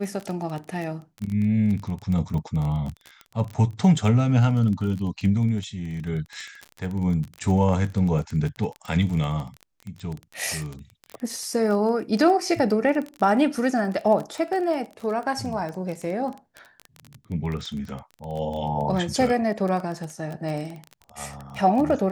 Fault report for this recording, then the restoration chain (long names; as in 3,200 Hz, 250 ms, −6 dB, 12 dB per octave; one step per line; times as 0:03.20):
surface crackle 20 per second −28 dBFS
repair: click removal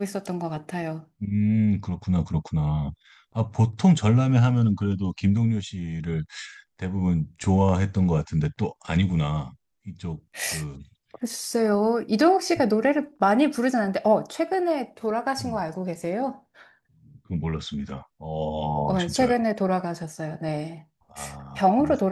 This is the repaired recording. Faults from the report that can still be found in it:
none of them is left